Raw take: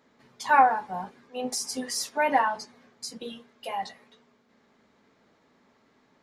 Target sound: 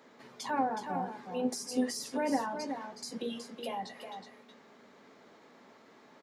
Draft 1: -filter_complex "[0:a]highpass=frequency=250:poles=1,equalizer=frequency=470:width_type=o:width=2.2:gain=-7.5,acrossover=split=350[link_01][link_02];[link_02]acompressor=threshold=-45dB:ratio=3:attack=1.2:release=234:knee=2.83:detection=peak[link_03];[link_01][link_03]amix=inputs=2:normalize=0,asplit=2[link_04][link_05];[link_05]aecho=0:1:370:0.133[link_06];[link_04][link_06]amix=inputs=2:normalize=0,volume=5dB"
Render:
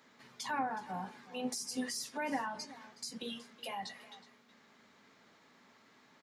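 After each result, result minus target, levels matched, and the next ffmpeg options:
echo-to-direct −10 dB; 500 Hz band −4.0 dB
-filter_complex "[0:a]highpass=frequency=250:poles=1,equalizer=frequency=470:width_type=o:width=2.2:gain=-7.5,acrossover=split=350[link_01][link_02];[link_02]acompressor=threshold=-45dB:ratio=3:attack=1.2:release=234:knee=2.83:detection=peak[link_03];[link_01][link_03]amix=inputs=2:normalize=0,asplit=2[link_04][link_05];[link_05]aecho=0:1:370:0.422[link_06];[link_04][link_06]amix=inputs=2:normalize=0,volume=5dB"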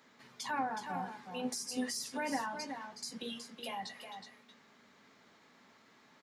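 500 Hz band −4.0 dB
-filter_complex "[0:a]highpass=frequency=250:poles=1,equalizer=frequency=470:width_type=o:width=2.2:gain=3,acrossover=split=350[link_01][link_02];[link_02]acompressor=threshold=-45dB:ratio=3:attack=1.2:release=234:knee=2.83:detection=peak[link_03];[link_01][link_03]amix=inputs=2:normalize=0,asplit=2[link_04][link_05];[link_05]aecho=0:1:370:0.422[link_06];[link_04][link_06]amix=inputs=2:normalize=0,volume=5dB"

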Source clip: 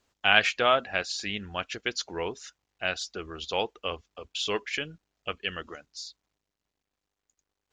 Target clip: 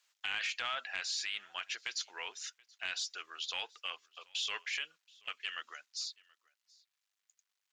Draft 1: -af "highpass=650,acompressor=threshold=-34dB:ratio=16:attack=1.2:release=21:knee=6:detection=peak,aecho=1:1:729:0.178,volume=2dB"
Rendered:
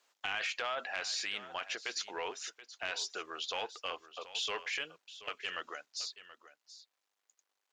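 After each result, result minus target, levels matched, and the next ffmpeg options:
500 Hz band +11.0 dB; echo-to-direct +11 dB
-af "highpass=1700,acompressor=threshold=-34dB:ratio=16:attack=1.2:release=21:knee=6:detection=peak,aecho=1:1:729:0.178,volume=2dB"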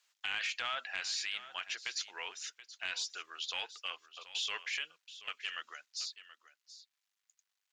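echo-to-direct +11 dB
-af "highpass=1700,acompressor=threshold=-34dB:ratio=16:attack=1.2:release=21:knee=6:detection=peak,aecho=1:1:729:0.0501,volume=2dB"

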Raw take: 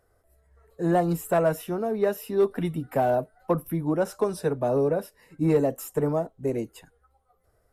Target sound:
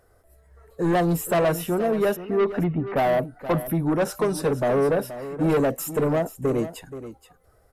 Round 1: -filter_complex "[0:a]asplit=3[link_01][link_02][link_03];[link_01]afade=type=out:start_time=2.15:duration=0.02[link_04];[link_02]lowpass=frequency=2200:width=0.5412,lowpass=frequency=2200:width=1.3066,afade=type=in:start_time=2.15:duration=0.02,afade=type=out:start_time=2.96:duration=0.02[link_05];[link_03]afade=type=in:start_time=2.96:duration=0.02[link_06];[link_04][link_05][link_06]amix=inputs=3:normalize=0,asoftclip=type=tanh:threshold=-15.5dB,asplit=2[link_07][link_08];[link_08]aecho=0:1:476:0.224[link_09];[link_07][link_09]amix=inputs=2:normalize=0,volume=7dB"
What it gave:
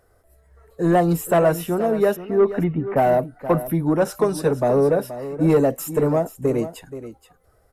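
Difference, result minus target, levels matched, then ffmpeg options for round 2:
soft clipping: distortion −10 dB
-filter_complex "[0:a]asplit=3[link_01][link_02][link_03];[link_01]afade=type=out:start_time=2.15:duration=0.02[link_04];[link_02]lowpass=frequency=2200:width=0.5412,lowpass=frequency=2200:width=1.3066,afade=type=in:start_time=2.15:duration=0.02,afade=type=out:start_time=2.96:duration=0.02[link_05];[link_03]afade=type=in:start_time=2.96:duration=0.02[link_06];[link_04][link_05][link_06]amix=inputs=3:normalize=0,asoftclip=type=tanh:threshold=-24dB,asplit=2[link_07][link_08];[link_08]aecho=0:1:476:0.224[link_09];[link_07][link_09]amix=inputs=2:normalize=0,volume=7dB"

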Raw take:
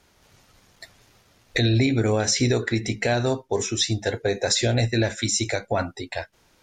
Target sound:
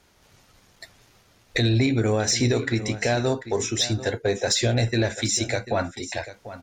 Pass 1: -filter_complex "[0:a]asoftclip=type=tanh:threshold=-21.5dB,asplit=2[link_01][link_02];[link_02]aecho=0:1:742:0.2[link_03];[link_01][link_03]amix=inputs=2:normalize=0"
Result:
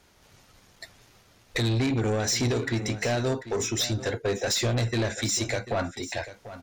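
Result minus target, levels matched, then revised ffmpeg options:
soft clipping: distortion +16 dB
-filter_complex "[0:a]asoftclip=type=tanh:threshold=-9.5dB,asplit=2[link_01][link_02];[link_02]aecho=0:1:742:0.2[link_03];[link_01][link_03]amix=inputs=2:normalize=0"

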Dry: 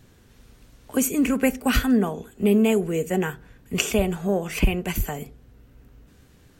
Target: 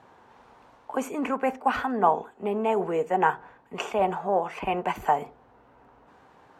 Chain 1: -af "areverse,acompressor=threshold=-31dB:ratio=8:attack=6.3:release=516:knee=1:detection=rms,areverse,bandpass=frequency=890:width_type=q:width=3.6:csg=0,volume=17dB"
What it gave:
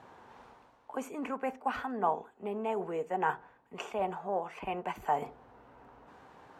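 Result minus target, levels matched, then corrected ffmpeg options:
downward compressor: peak gain reduction +9 dB
-af "areverse,acompressor=threshold=-21dB:ratio=8:attack=6.3:release=516:knee=1:detection=rms,areverse,bandpass=frequency=890:width_type=q:width=3.6:csg=0,volume=17dB"

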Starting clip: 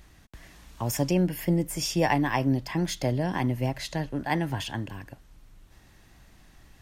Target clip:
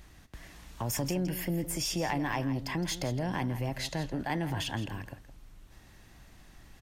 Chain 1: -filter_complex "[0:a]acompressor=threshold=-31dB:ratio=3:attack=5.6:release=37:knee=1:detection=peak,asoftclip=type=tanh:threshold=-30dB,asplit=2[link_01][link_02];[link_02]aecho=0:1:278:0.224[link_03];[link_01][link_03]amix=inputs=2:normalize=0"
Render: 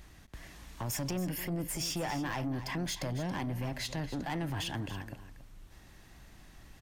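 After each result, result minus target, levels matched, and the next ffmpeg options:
echo 113 ms late; soft clipping: distortion +15 dB
-filter_complex "[0:a]acompressor=threshold=-31dB:ratio=3:attack=5.6:release=37:knee=1:detection=peak,asoftclip=type=tanh:threshold=-30dB,asplit=2[link_01][link_02];[link_02]aecho=0:1:165:0.224[link_03];[link_01][link_03]amix=inputs=2:normalize=0"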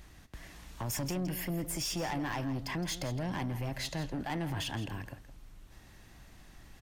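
soft clipping: distortion +15 dB
-filter_complex "[0:a]acompressor=threshold=-31dB:ratio=3:attack=5.6:release=37:knee=1:detection=peak,asoftclip=type=tanh:threshold=-19dB,asplit=2[link_01][link_02];[link_02]aecho=0:1:165:0.224[link_03];[link_01][link_03]amix=inputs=2:normalize=0"

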